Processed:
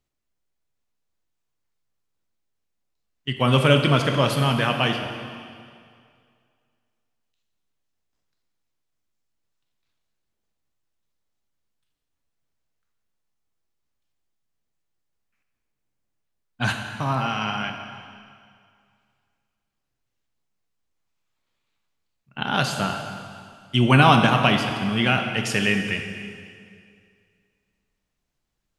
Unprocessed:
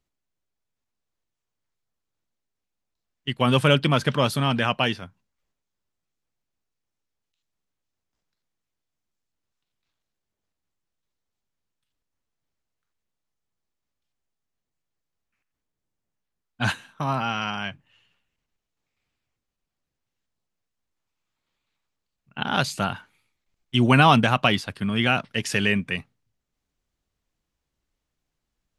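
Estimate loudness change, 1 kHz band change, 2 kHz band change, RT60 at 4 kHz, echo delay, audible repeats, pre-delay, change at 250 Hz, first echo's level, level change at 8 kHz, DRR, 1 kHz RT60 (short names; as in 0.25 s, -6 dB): +1.5 dB, +1.5 dB, +1.5 dB, 2.1 s, none, none, 6 ms, +1.0 dB, none, +1.5 dB, 4.0 dB, 2.2 s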